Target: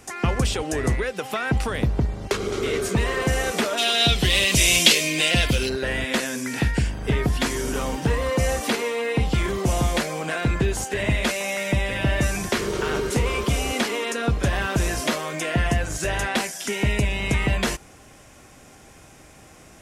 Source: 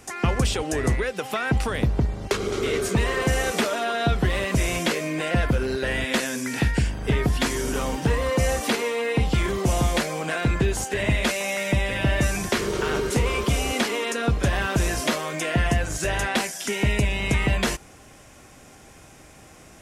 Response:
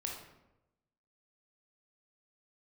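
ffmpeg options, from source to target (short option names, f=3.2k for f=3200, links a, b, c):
-filter_complex "[0:a]asplit=3[a][b][c];[a]afade=t=out:st=3.77:d=0.02[d];[b]highshelf=f=2.1k:t=q:w=1.5:g=12.5,afade=t=in:st=3.77:d=0.02,afade=t=out:st=5.68:d=0.02[e];[c]afade=t=in:st=5.68:d=0.02[f];[d][e][f]amix=inputs=3:normalize=0"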